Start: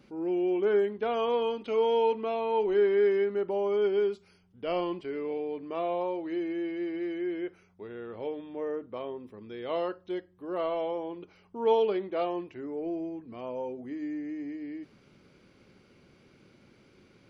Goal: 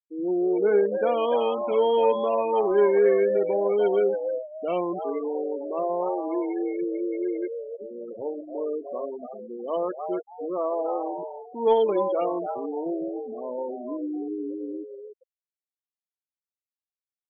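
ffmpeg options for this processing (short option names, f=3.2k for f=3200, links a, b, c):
-filter_complex "[0:a]asplit=5[a][b][c][d][e];[b]adelay=292,afreqshift=110,volume=-6dB[f];[c]adelay=584,afreqshift=220,volume=-16.5dB[g];[d]adelay=876,afreqshift=330,volume=-26.9dB[h];[e]adelay=1168,afreqshift=440,volume=-37.4dB[i];[a][f][g][h][i]amix=inputs=5:normalize=0,afftfilt=real='re*gte(hypot(re,im),0.0316)':imag='im*gte(hypot(re,im),0.0316)':win_size=1024:overlap=0.75,aeval=exprs='0.211*(cos(1*acos(clip(val(0)/0.211,-1,1)))-cos(1*PI/2))+0.00596*(cos(3*acos(clip(val(0)/0.211,-1,1)))-cos(3*PI/2))':c=same,volume=4.5dB"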